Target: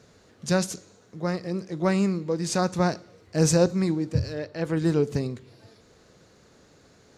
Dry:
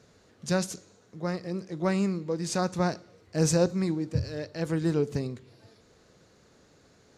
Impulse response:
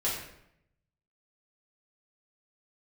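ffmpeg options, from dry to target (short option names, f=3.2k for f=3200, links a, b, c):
-filter_complex "[0:a]asettb=1/sr,asplit=3[a][b][c];[a]atrim=end=4.334[d];[b]atrim=start=4.33:end=4.77,asetpts=PTS-STARTPTS,afade=t=in:d=0.004:c=qsin,afade=t=out:st=0.436:d=0.004:c=qsin,bass=f=250:g=-3,treble=f=4k:g=-8[e];[c]atrim=start=4.766[f];[d][e]acrossfade=d=0.004:c1=hsin:c2=qsin[g];[g][f]acrossfade=d=0.004:c1=qsin:c2=hsin,volume=3.5dB"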